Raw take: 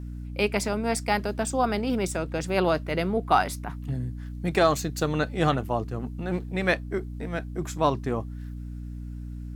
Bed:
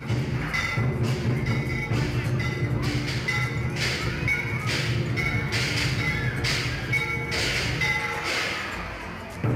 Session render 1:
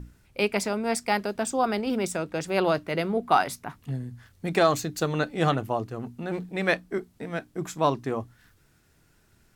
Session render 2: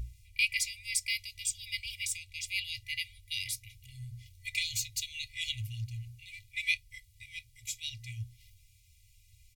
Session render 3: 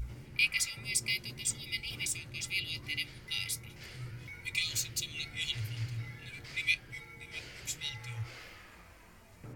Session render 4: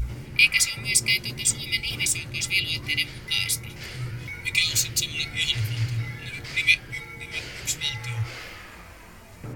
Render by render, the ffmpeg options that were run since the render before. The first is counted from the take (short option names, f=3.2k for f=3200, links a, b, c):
-af "bandreject=f=60:t=h:w=6,bandreject=f=120:t=h:w=6,bandreject=f=180:t=h:w=6,bandreject=f=240:t=h:w=6,bandreject=f=300:t=h:w=6"
-af "afftfilt=real='re*(1-between(b*sr/4096,120,2000))':imag='im*(1-between(b*sr/4096,120,2000))':win_size=4096:overlap=0.75,aecho=1:1:2.1:0.73"
-filter_complex "[1:a]volume=-23.5dB[a];[0:a][a]amix=inputs=2:normalize=0"
-af "volume=11dB"